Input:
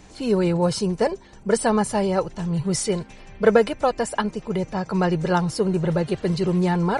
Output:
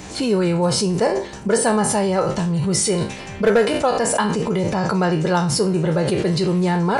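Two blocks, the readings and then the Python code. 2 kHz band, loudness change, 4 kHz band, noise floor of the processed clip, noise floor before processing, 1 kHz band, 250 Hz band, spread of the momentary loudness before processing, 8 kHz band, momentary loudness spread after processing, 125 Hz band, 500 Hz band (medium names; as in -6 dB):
+4.0 dB, +3.5 dB, +7.0 dB, -34 dBFS, -45 dBFS, +3.5 dB, +3.0 dB, 7 LU, +8.5 dB, 4 LU, +3.5 dB, +2.5 dB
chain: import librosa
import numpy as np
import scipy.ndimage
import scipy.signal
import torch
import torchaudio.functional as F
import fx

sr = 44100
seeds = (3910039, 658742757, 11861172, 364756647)

p1 = fx.spec_trails(x, sr, decay_s=0.33)
p2 = scipy.signal.sosfilt(scipy.signal.butter(2, 71.0, 'highpass', fs=sr, output='sos'), p1)
p3 = fx.high_shelf(p2, sr, hz=7300.0, db=4.0)
p4 = fx.over_compress(p3, sr, threshold_db=-31.0, ratio=-1.0)
p5 = p3 + F.gain(torch.from_numpy(p4), 1.0).numpy()
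y = np.clip(p5, -10.0 ** (-8.5 / 20.0), 10.0 ** (-8.5 / 20.0))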